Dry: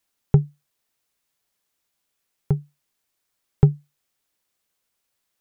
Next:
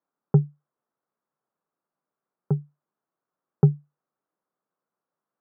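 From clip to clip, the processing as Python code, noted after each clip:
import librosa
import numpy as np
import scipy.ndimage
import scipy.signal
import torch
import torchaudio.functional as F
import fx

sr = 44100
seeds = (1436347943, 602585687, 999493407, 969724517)

y = scipy.signal.sosfilt(scipy.signal.cheby1(3, 1.0, [150.0, 1300.0], 'bandpass', fs=sr, output='sos'), x)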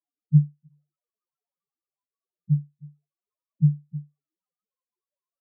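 y = fx.spec_topn(x, sr, count=1)
y = y + 10.0 ** (-18.0 / 20.0) * np.pad(y, (int(314 * sr / 1000.0), 0))[:len(y)]
y = fx.flanger_cancel(y, sr, hz=0.72, depth_ms=5.8)
y = y * 10.0 ** (8.0 / 20.0)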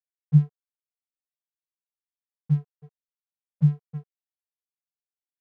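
y = np.sign(x) * np.maximum(np.abs(x) - 10.0 ** (-44.5 / 20.0), 0.0)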